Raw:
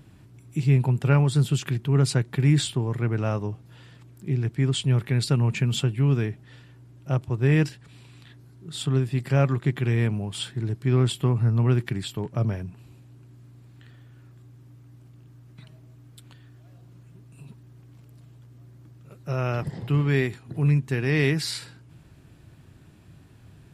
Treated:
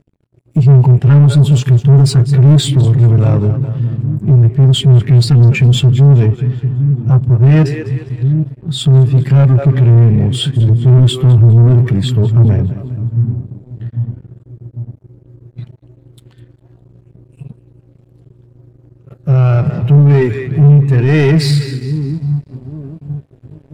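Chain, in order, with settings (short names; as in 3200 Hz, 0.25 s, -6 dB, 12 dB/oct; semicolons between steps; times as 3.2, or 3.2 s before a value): split-band echo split 330 Hz, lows 0.799 s, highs 0.203 s, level -12.5 dB; sample leveller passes 5; spectral expander 1.5:1; gain +6.5 dB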